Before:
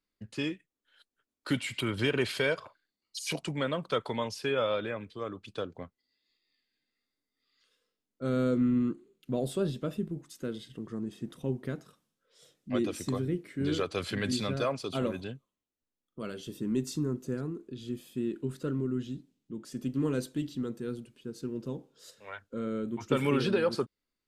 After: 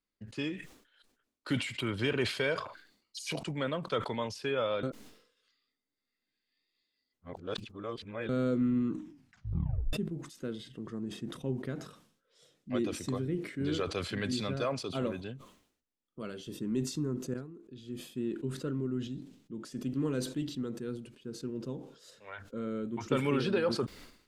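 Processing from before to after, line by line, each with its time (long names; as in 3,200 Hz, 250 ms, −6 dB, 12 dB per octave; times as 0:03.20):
0:04.83–0:08.29: reverse
0:08.87: tape stop 1.06 s
0:17.34–0:18.26: fade in, from −14.5 dB
whole clip: high-shelf EQ 11,000 Hz −10.5 dB; level that may fall only so fast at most 95 dB per second; level −2.5 dB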